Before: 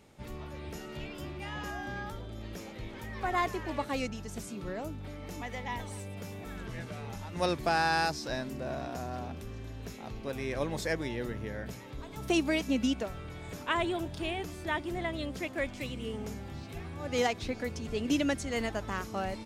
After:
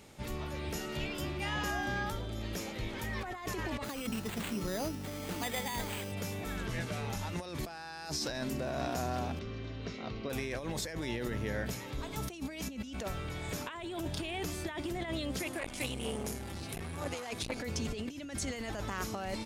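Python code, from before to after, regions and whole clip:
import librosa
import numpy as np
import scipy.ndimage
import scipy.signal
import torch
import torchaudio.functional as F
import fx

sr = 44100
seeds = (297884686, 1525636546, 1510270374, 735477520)

y = fx.chain(x, sr, fx.peak_eq(hz=210.0, db=3.0, octaves=0.78),
    fx.hum_notches(base_hz=50, count=6),
    fx.resample_bad(factor=8, down='none', up='hold'), at=(3.84, 6.12))
y = fx.chain(y, sr, fx.lowpass(hz=4800.0, slope=24),
    fx.notch_comb(f0_hz=840.0), at=(9.39, 10.3))
y = fx.chain(y, sr, fx.peak_eq(hz=10000.0, db=11.5, octaves=0.46),
    fx.hum_notches(base_hz=50, count=8),
    fx.transformer_sat(knee_hz=1600.0), at=(15.39, 17.59))
y = fx.high_shelf(y, sr, hz=2500.0, db=5.5)
y = fx.over_compress(y, sr, threshold_db=-37.0, ratio=-1.0)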